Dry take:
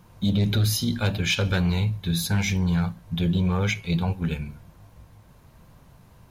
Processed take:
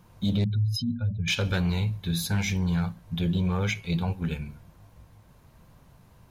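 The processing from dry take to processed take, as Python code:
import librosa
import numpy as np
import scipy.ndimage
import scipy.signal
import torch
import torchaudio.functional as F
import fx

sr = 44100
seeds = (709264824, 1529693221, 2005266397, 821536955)

y = fx.spec_expand(x, sr, power=2.4, at=(0.44, 1.28))
y = y * 10.0 ** (-3.0 / 20.0)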